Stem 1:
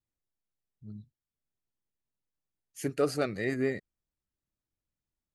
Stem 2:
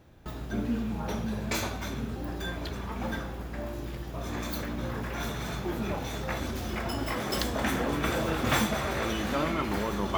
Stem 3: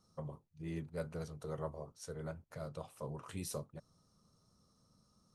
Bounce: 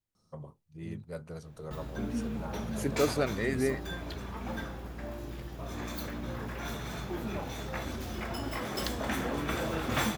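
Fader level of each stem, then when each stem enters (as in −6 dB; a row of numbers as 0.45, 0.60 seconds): 0.0, −4.0, 0.0 decibels; 0.00, 1.45, 0.15 seconds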